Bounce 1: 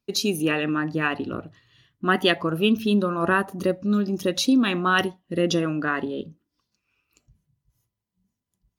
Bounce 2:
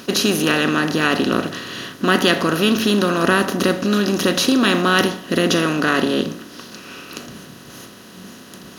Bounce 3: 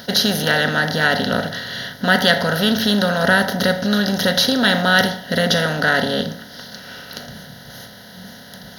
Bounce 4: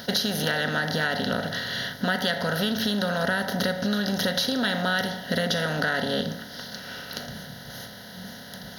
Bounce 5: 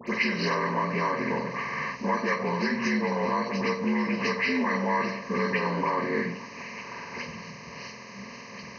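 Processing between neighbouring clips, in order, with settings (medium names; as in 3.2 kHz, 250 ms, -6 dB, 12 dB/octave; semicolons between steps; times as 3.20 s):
spectral levelling over time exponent 0.4; treble shelf 6.3 kHz +6 dB
static phaser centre 1.7 kHz, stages 8; trim +5 dB
compression, threshold -20 dBFS, peak gain reduction 10.5 dB; trim -2 dB
frequency axis rescaled in octaves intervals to 76%; phase dispersion highs, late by 78 ms, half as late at 2.1 kHz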